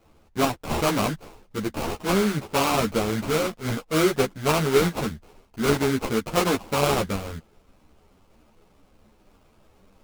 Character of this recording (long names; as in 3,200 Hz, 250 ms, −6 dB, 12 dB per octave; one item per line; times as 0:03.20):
aliases and images of a low sample rate 1,800 Hz, jitter 20%
a shimmering, thickened sound